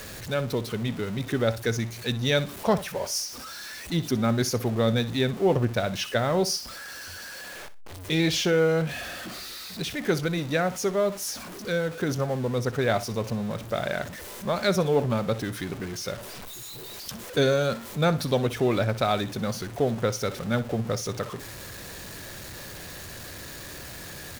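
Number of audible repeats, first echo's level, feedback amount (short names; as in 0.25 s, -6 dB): 2, -16.0 dB, 21%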